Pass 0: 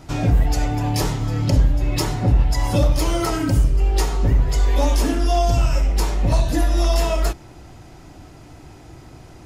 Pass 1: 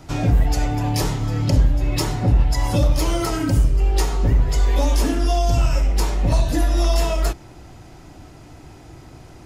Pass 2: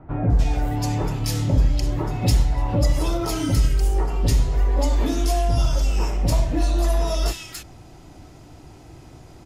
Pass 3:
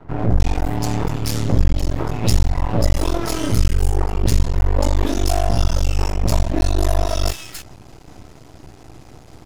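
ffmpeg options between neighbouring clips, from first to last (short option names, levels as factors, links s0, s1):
-filter_complex "[0:a]acrossover=split=310|3000[s0][s1][s2];[s1]acompressor=threshold=0.0794:ratio=6[s3];[s0][s3][s2]amix=inputs=3:normalize=0"
-filter_complex "[0:a]acrossover=split=1700[s0][s1];[s1]adelay=300[s2];[s0][s2]amix=inputs=2:normalize=0,volume=0.794"
-af "aeval=exprs='max(val(0),0)':c=same,volume=2"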